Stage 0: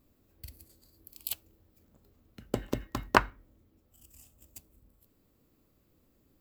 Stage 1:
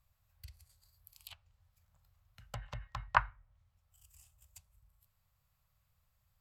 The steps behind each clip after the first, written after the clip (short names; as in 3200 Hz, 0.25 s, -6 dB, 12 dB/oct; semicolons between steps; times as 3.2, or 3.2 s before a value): Chebyshev band-stop 110–910 Hz, order 2; treble ducked by the level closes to 2200 Hz, closed at -36 dBFS; gain -3.5 dB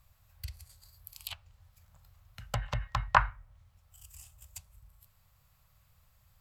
maximiser +15.5 dB; gain -5 dB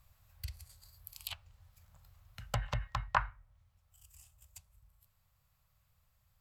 vocal rider within 4 dB 0.5 s; gain -3.5 dB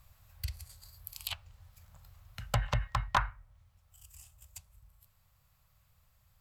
hard clip -23.5 dBFS, distortion -11 dB; gain +5 dB